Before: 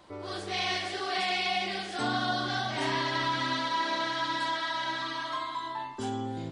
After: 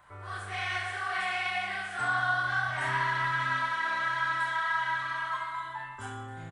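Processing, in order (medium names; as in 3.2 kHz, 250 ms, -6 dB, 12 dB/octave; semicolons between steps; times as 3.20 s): FFT filter 120 Hz 0 dB, 300 Hz -18 dB, 1.5 kHz +7 dB, 4.7 kHz -15 dB, 8.6 kHz 0 dB; reverse bouncing-ball echo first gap 30 ms, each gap 1.3×, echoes 5; trim -1.5 dB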